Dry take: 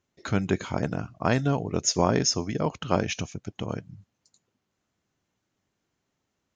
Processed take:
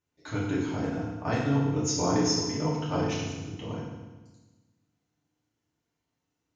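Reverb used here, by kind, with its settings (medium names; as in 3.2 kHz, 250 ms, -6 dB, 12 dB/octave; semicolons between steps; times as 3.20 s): FDN reverb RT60 1.2 s, low-frequency decay 1.3×, high-frequency decay 0.95×, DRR -7.5 dB; trim -12 dB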